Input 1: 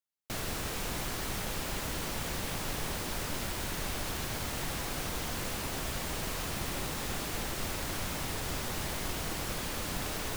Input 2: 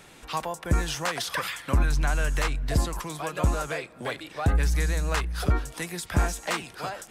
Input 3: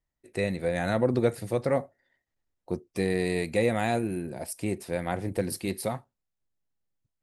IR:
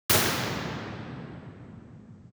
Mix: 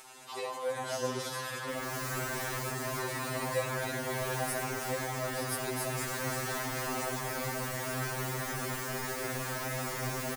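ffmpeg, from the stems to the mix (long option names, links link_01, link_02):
-filter_complex "[0:a]highshelf=frequency=2600:width_type=q:width=1.5:gain=-6.5,adelay=1400,volume=-1dB,asplit=2[link_01][link_02];[link_02]volume=-20dB[link_03];[1:a]equalizer=frequency=890:width_type=o:width=0.77:gain=8.5,acompressor=threshold=-30dB:ratio=4,volume=-9.5dB,asplit=2[link_04][link_05];[link_05]volume=-17.5dB[link_06];[2:a]volume=-8.5dB,asplit=2[link_07][link_08];[link_08]apad=whole_len=518828[link_09];[link_01][link_09]sidechaincompress=threshold=-36dB:ratio=8:attack=7.6:release=390[link_10];[3:a]atrim=start_sample=2205[link_11];[link_03][link_06]amix=inputs=2:normalize=0[link_12];[link_12][link_11]afir=irnorm=-1:irlink=0[link_13];[link_10][link_04][link_07][link_13]amix=inputs=4:normalize=0,bass=frequency=250:gain=-13,treble=frequency=4000:gain=9,acompressor=mode=upward:threshold=-43dB:ratio=2.5,afftfilt=real='re*2.45*eq(mod(b,6),0)':imag='im*2.45*eq(mod(b,6),0)':win_size=2048:overlap=0.75"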